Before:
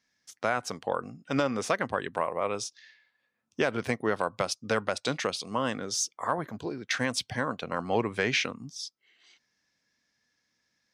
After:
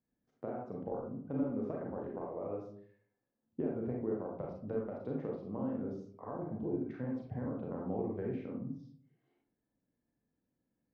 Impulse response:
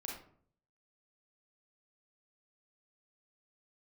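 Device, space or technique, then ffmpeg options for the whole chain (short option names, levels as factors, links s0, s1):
television next door: -filter_complex "[0:a]acompressor=threshold=0.0282:ratio=6,lowpass=460[s0];[1:a]atrim=start_sample=2205[s1];[s0][s1]afir=irnorm=-1:irlink=0,volume=1.5"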